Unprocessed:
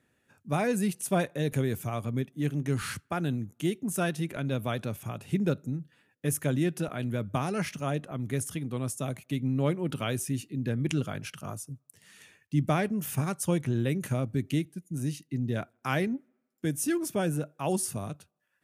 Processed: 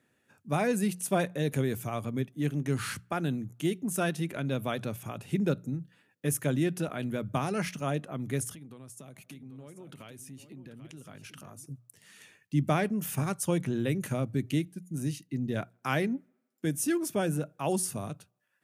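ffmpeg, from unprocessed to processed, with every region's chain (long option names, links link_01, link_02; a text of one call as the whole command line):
ffmpeg -i in.wav -filter_complex "[0:a]asettb=1/sr,asplit=3[link_01][link_02][link_03];[link_01]atrim=end=8.514[link_04];[link_02]atrim=start=8.51:end=11.66,asetpts=PTS-STARTPTS,afade=type=in:duration=0.004:curve=qsin,afade=type=out:start_time=3.146:duration=0.004:curve=qsin,acompressor=threshold=-42dB:ratio=16:attack=3.2:release=140:knee=1:detection=peak,aecho=1:1:790:0.266,atrim=end_sample=138915[link_05];[link_03]atrim=start=11.656[link_06];[link_04][link_05]acrossfade=duration=0.004:curve1=hsin:curve2=qsin[link_07];[link_07][link_06]acrossfade=duration=0.004:curve1=qsin:curve2=hsin,highpass=95,bandreject=frequency=60:width_type=h:width=6,bandreject=frequency=120:width_type=h:width=6,bandreject=frequency=180:width_type=h:width=6" out.wav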